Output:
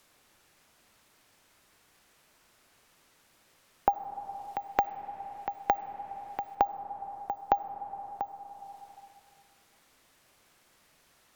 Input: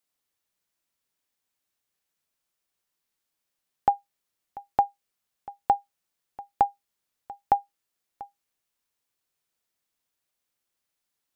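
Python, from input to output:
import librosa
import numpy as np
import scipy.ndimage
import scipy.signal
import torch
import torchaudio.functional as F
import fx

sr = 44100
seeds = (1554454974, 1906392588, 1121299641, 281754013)

y = np.repeat(x[::2], 2)[:len(x)]
y = fx.high_shelf_res(y, sr, hz=1600.0, db=9.5, q=1.5, at=(3.94, 6.55))
y = fx.rev_freeverb(y, sr, rt60_s=1.9, hf_ratio=0.75, predelay_ms=15, drr_db=11.5)
y = fx.band_squash(y, sr, depth_pct=70)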